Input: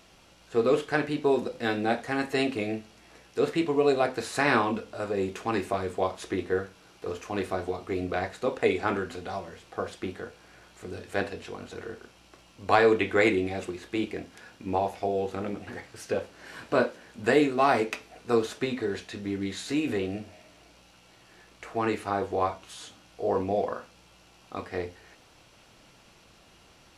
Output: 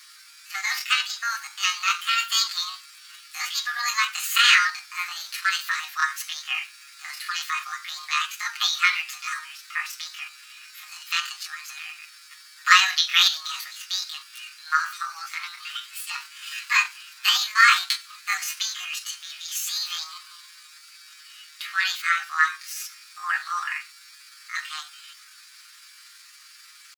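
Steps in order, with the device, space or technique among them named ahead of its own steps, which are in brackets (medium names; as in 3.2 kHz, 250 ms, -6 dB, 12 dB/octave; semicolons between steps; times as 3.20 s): steep high-pass 770 Hz 48 dB/octave; peaking EQ 2.9 kHz +2.5 dB 0.38 oct; chipmunk voice (pitch shift +9 st); comb 6.5 ms, depth 88%; trim +7.5 dB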